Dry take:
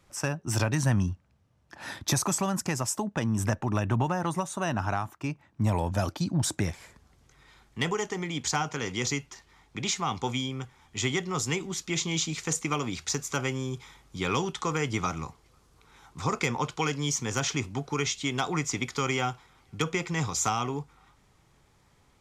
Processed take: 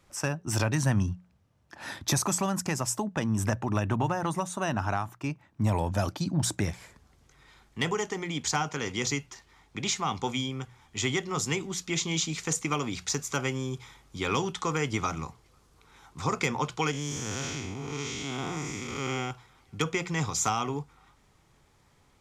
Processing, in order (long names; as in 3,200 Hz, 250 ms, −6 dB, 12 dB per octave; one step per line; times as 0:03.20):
0:16.91–0:19.31: spectrum smeared in time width 249 ms
mains-hum notches 60/120/180 Hz